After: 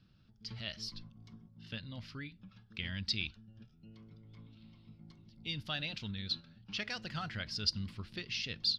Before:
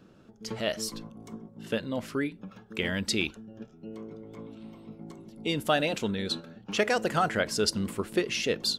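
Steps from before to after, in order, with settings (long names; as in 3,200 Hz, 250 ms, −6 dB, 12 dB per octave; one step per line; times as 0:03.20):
drawn EQ curve 110 Hz 0 dB, 440 Hz −24 dB, 4,900 Hz 0 dB, 7,500 Hz −25 dB
level −1.5 dB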